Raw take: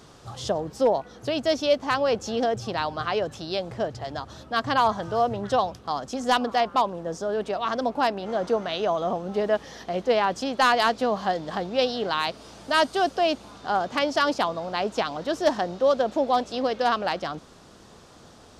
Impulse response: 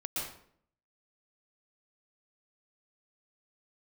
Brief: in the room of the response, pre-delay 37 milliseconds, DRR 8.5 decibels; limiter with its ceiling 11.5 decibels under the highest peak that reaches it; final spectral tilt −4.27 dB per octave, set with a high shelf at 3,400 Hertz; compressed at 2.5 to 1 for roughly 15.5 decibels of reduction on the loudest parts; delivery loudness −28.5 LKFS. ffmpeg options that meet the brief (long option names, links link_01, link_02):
-filter_complex "[0:a]highshelf=frequency=3400:gain=-6,acompressor=threshold=-41dB:ratio=2.5,alimiter=level_in=11.5dB:limit=-24dB:level=0:latency=1,volume=-11.5dB,asplit=2[link_01][link_02];[1:a]atrim=start_sample=2205,adelay=37[link_03];[link_02][link_03]afir=irnorm=-1:irlink=0,volume=-12dB[link_04];[link_01][link_04]amix=inputs=2:normalize=0,volume=15.5dB"